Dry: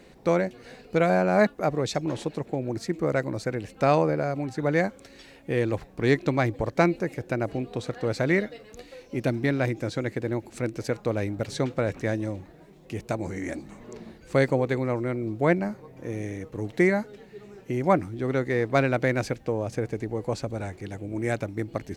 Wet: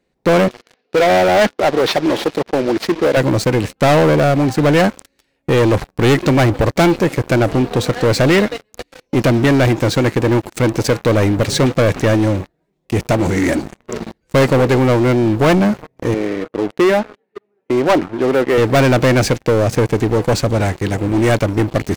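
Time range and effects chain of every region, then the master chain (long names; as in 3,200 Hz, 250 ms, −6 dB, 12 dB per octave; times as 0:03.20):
0:00.48–0:03.17: variable-slope delta modulation 32 kbit/s + band-pass filter 290–4,000 Hz + high-shelf EQ 2,500 Hz +3 dB
0:16.14–0:18.58: band-pass filter 300–3,500 Hz + high-shelf EQ 2,200 Hz −10 dB
whole clip: noise gate −42 dBFS, range −7 dB; leveller curve on the samples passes 5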